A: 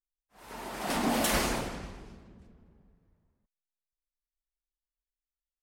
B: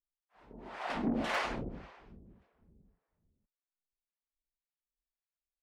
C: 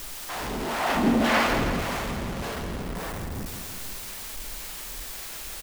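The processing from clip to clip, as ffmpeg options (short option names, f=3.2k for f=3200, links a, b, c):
-filter_complex "[0:a]acrossover=split=520[a][b];[a]aeval=exprs='val(0)*(1-1/2+1/2*cos(2*PI*1.8*n/s))':c=same[c];[b]aeval=exprs='val(0)*(1-1/2-1/2*cos(2*PI*1.8*n/s))':c=same[d];[c][d]amix=inputs=2:normalize=0,lowpass=2.8k,aeval=exprs='0.0944*(cos(1*acos(clip(val(0)/0.0944,-1,1)))-cos(1*PI/2))+0.0133*(cos(5*acos(clip(val(0)/0.0944,-1,1)))-cos(5*PI/2))+0.00944*(cos(7*acos(clip(val(0)/0.0944,-1,1)))-cos(7*PI/2))':c=same,volume=-1.5dB"
-filter_complex "[0:a]aeval=exprs='val(0)+0.5*0.0168*sgn(val(0))':c=same,asplit=2[a][b];[b]aecho=0:1:166|332|498|664|830|996|1162|1328:0.422|0.249|0.147|0.0866|0.0511|0.0301|0.0178|0.0105[c];[a][c]amix=inputs=2:normalize=0,volume=8.5dB"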